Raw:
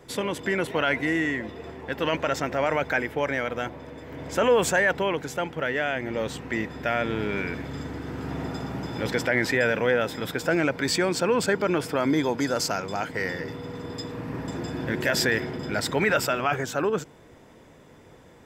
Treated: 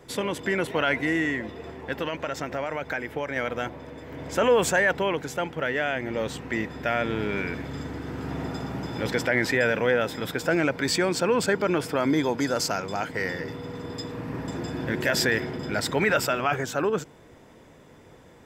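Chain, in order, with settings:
0:01.95–0:03.36: downward compressor, threshold −26 dBFS, peak gain reduction 7 dB

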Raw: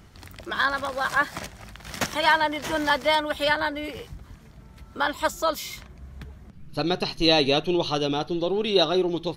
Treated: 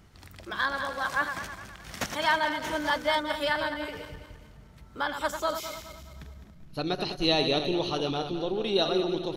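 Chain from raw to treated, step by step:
feedback delay that plays each chunk backwards 104 ms, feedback 63%, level −8 dB
level −5.5 dB

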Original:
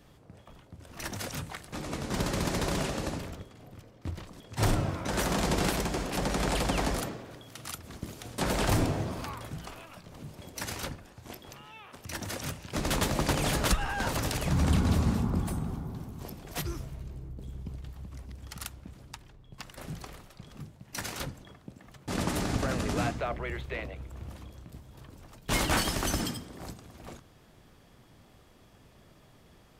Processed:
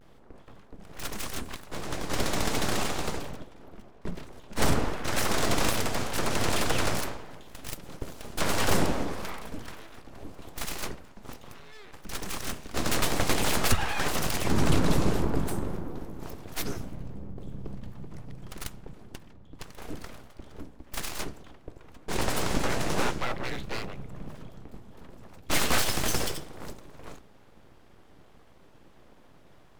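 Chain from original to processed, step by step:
pitch vibrato 0.31 Hz 31 cents
full-wave rectification
one half of a high-frequency compander decoder only
level +5 dB

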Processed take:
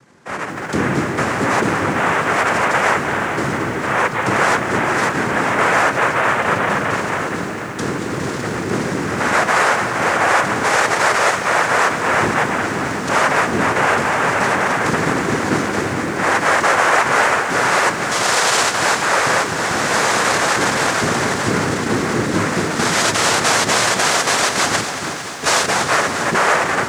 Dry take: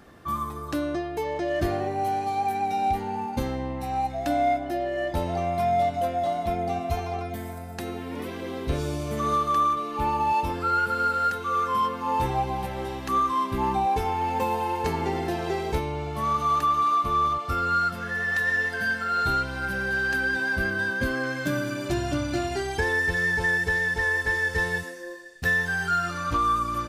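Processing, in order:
automatic gain control gain up to 12 dB
soft clipping −11.5 dBFS, distortion −15 dB
cochlear-implant simulation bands 3
feedback echo at a low word length 226 ms, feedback 80%, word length 7 bits, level −12 dB

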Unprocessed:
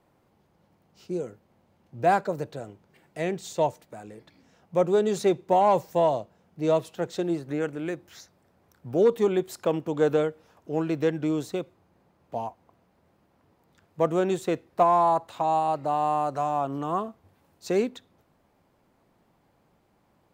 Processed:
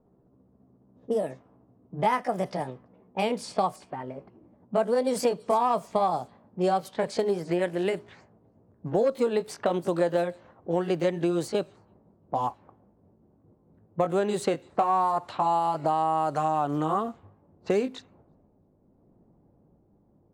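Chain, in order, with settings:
pitch glide at a constant tempo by +4.5 semitones ending unshifted
downward compressor 4 to 1, threshold −30 dBFS, peak gain reduction 11.5 dB
delay with a high-pass on its return 332 ms, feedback 44%, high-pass 5,000 Hz, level −14 dB
low-pass that shuts in the quiet parts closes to 390 Hz, open at −32 dBFS
level +7.5 dB

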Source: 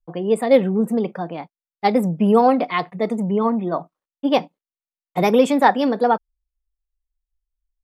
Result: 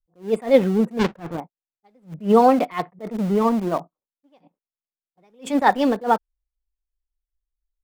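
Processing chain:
0:00.99–0:01.40: each half-wave held at its own peak
low-pass that shuts in the quiet parts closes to 490 Hz, open at −10.5 dBFS
in parallel at −8 dB: centre clipping without the shift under −22 dBFS
on the sum: level that may rise only so fast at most 230 dB per second
level −2.5 dB

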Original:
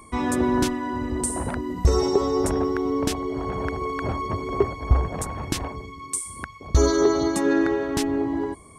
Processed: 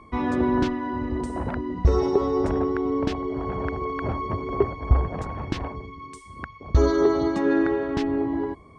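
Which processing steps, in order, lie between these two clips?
high-frequency loss of the air 220 metres

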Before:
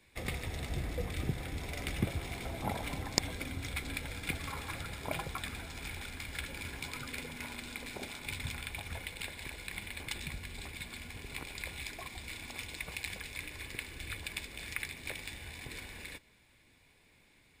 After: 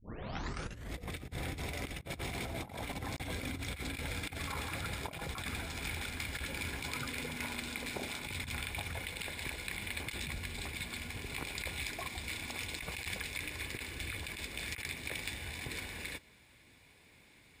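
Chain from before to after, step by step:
turntable start at the beginning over 0.95 s
high-pass filter 45 Hz 12 dB per octave
compressor whose output falls as the input rises −41 dBFS, ratio −0.5
level +2 dB

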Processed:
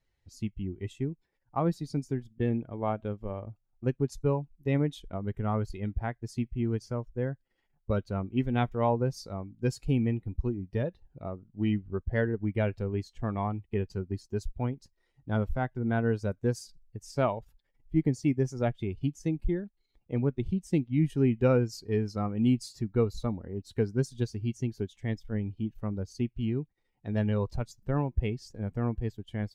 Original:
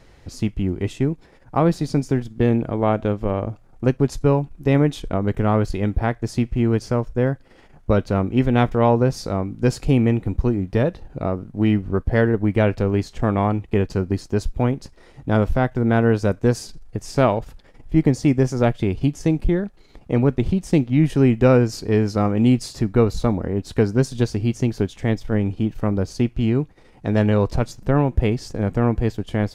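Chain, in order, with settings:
spectral dynamics exaggerated over time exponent 1.5
level −7.5 dB

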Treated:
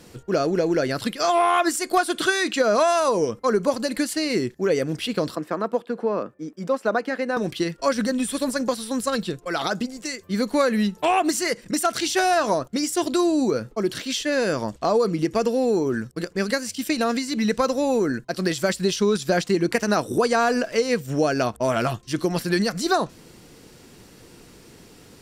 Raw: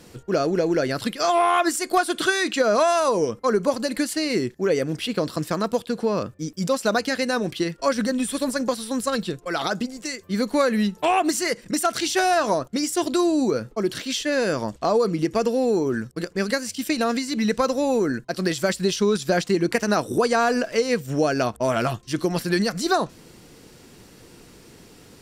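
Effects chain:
0:05.35–0:07.37: three-way crossover with the lows and the highs turned down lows −23 dB, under 200 Hz, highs −16 dB, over 2,200 Hz

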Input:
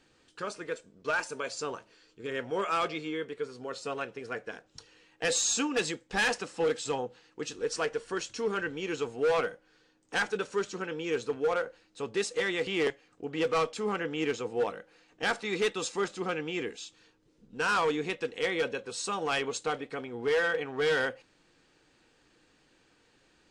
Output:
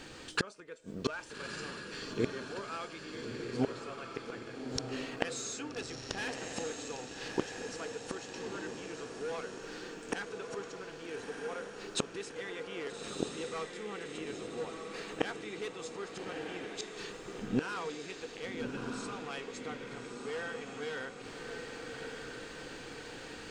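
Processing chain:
gate with flip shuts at −33 dBFS, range −29 dB
feedback delay with all-pass diffusion 1,254 ms, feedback 54%, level −4 dB
level +16.5 dB

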